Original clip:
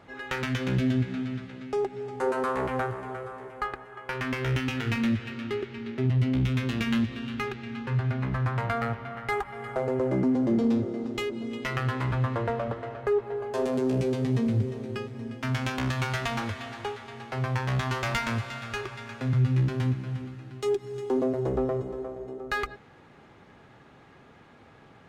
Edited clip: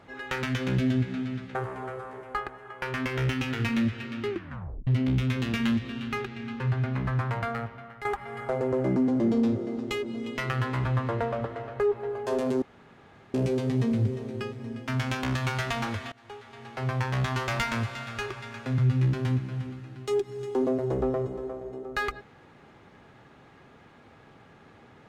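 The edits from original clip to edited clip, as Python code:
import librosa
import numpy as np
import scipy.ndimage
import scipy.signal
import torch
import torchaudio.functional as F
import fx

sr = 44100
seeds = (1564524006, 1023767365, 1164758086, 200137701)

y = fx.edit(x, sr, fx.cut(start_s=1.55, length_s=1.27),
    fx.tape_stop(start_s=5.57, length_s=0.57),
    fx.fade_out_to(start_s=8.45, length_s=0.87, floor_db=-11.0),
    fx.insert_room_tone(at_s=13.89, length_s=0.72),
    fx.fade_in_from(start_s=16.67, length_s=0.75, floor_db=-23.5), tone=tone)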